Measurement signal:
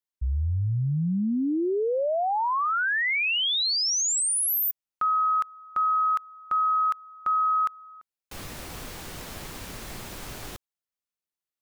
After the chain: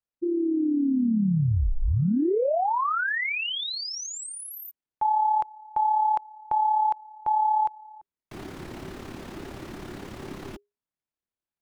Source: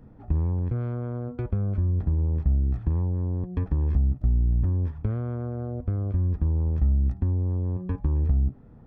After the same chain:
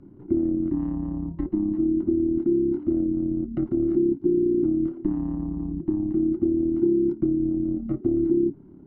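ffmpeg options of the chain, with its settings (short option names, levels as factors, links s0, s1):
-af "lowpass=f=1400:p=1,lowshelf=f=70:g=-7,acontrast=47,tremolo=f=35:d=0.519,afreqshift=-410"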